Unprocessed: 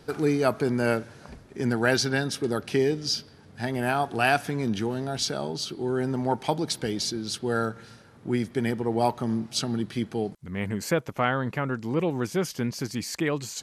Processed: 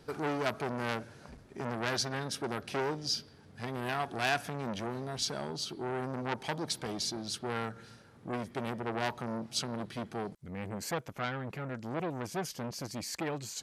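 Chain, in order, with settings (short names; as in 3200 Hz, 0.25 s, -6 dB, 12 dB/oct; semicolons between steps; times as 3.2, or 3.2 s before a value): core saturation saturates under 2600 Hz; gain -5 dB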